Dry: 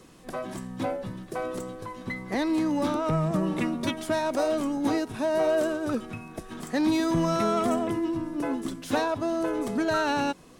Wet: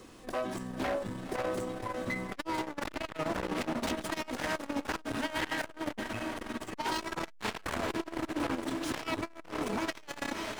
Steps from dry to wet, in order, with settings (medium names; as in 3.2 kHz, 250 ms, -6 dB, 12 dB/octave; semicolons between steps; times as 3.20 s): median filter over 3 samples; peaking EQ 160 Hz -13.5 dB 0.3 oct; wavefolder -27.5 dBFS; echo that smears into a reverb 514 ms, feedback 63%, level -7.5 dB; transformer saturation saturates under 380 Hz; trim +1.5 dB